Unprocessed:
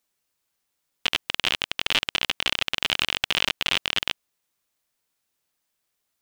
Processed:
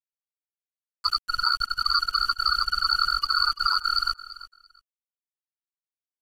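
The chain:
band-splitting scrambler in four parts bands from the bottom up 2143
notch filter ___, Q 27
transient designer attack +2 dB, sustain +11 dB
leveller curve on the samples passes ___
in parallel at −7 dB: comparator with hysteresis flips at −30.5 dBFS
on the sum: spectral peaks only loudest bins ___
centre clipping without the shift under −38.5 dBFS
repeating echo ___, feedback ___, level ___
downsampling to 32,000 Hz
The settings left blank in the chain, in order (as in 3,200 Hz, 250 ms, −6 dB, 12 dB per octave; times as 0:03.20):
5,200 Hz, 1, 16, 339 ms, 18%, −16.5 dB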